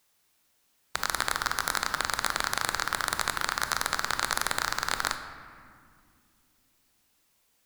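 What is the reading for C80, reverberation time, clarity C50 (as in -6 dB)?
10.0 dB, 2.2 s, 8.5 dB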